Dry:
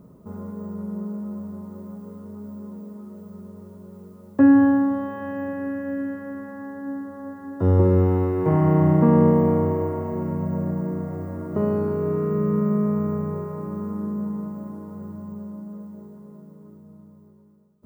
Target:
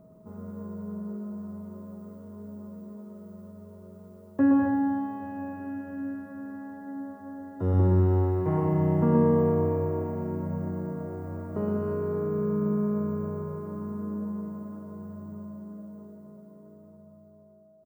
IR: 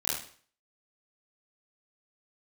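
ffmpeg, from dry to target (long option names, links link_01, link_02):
-af "aecho=1:1:120|204|262.8|304|332.8:0.631|0.398|0.251|0.158|0.1,aeval=exprs='val(0)+0.00398*sin(2*PI*640*n/s)':channel_layout=same,volume=-7.5dB"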